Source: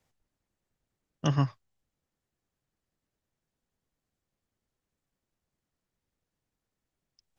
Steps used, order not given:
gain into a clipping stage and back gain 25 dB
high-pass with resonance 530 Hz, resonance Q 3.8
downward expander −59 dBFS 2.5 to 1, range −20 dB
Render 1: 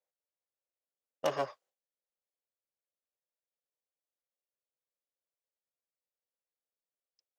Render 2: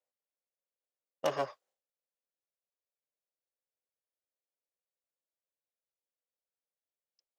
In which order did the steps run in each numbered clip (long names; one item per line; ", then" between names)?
gain into a clipping stage and back, then high-pass with resonance, then downward expander
gain into a clipping stage and back, then downward expander, then high-pass with resonance